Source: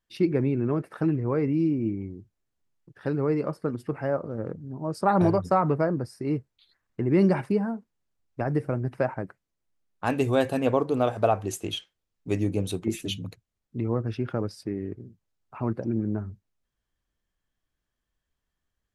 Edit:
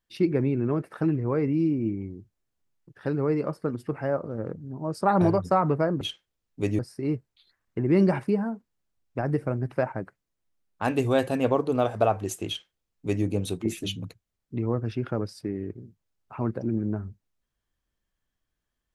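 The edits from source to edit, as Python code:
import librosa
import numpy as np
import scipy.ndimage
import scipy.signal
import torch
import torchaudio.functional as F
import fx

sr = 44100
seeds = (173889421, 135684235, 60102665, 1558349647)

y = fx.edit(x, sr, fx.duplicate(start_s=11.69, length_s=0.78, to_s=6.01), tone=tone)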